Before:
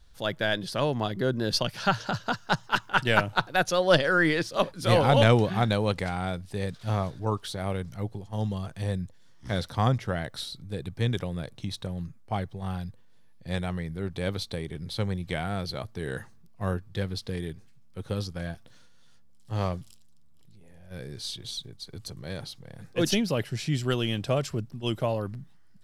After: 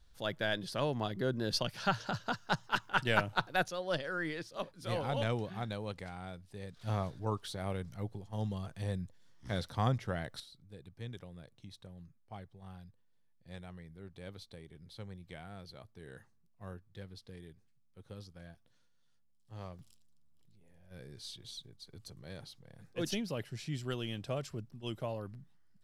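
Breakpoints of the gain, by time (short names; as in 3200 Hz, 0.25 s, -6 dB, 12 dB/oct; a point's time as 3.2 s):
-7 dB
from 3.68 s -14.5 dB
from 6.77 s -7 dB
from 10.4 s -17.5 dB
from 19.79 s -11 dB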